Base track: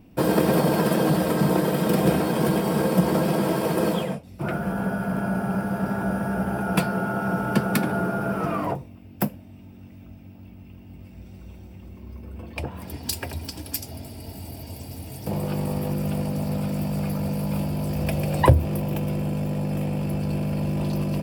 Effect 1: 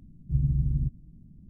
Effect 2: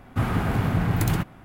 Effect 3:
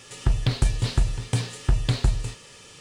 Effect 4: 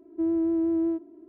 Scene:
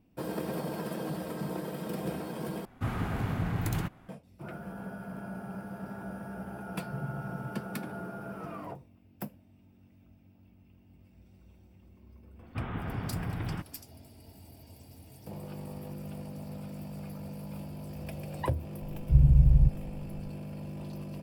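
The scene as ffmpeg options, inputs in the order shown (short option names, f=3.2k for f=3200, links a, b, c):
-filter_complex "[2:a]asplit=2[a][b];[1:a]asplit=2[c][d];[0:a]volume=-15dB[e];[c]highpass=f=110:w=0.5412,highpass=f=110:w=1.3066[f];[b]aresample=8000,aresample=44100[g];[d]aemphasis=mode=reproduction:type=riaa[h];[e]asplit=2[i][j];[i]atrim=end=2.654[k];[a]atrim=end=1.44,asetpts=PTS-STARTPTS,volume=-8.5dB[l];[j]atrim=start=4.086[m];[f]atrim=end=1.49,asetpts=PTS-STARTPTS,volume=-11dB,afade=t=in:d=0.004:c=hsin,afade=t=out:st=1.486:d=0.004:c=hsin,adelay=6590[n];[g]atrim=end=1.44,asetpts=PTS-STARTPTS,volume=-12dB,afade=t=in:d=0.004:c=hsin,afade=t=out:st=1.436:d=0.004:c=hsin,adelay=12390[o];[h]atrim=end=1.49,asetpts=PTS-STARTPTS,volume=-8.5dB,afade=t=in:d=0.004:c=hsin,afade=t=out:st=1.486:d=0.004:c=hsin,adelay=18800[p];[k][l]acrossfade=d=0.004:c1=hsin:c2=hsin[q];[q][m]acrossfade=d=0.004:c1=hsin:c2=hsin[r];[r][n][o][p]amix=inputs=4:normalize=0"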